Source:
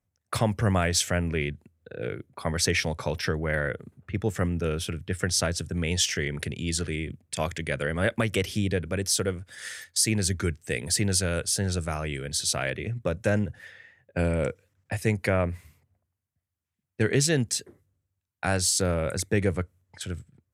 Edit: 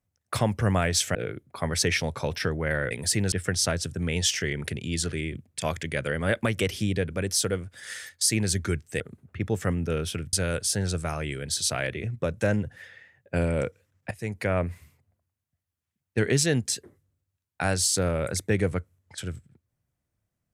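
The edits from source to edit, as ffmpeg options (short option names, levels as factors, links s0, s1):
-filter_complex "[0:a]asplit=7[s0][s1][s2][s3][s4][s5][s6];[s0]atrim=end=1.152[s7];[s1]atrim=start=1.978:end=3.742[s8];[s2]atrim=start=10.748:end=11.162[s9];[s3]atrim=start=5.068:end=10.752[s10];[s4]atrim=start=3.738:end=5.072[s11];[s5]atrim=start=11.158:end=14.94,asetpts=PTS-STARTPTS,afade=t=out:st=3.778:d=0.004:c=hsin:silence=0.16788[s12];[s6]atrim=start=14.94,asetpts=PTS-STARTPTS,afade=t=in:d=0.5:silence=0.16788[s13];[s7][s8]acrossfade=d=0.004:c1=hsin:c2=hsin[s14];[s14][s9]acrossfade=d=0.004:c1=hsin:c2=hsin[s15];[s15][s10]acrossfade=d=0.004:c1=hsin:c2=hsin[s16];[s16][s11]acrossfade=d=0.004:c1=hsin:c2=hsin[s17];[s12][s13]concat=n=2:v=0:a=1[s18];[s17][s18]acrossfade=d=0.004:c1=hsin:c2=hsin"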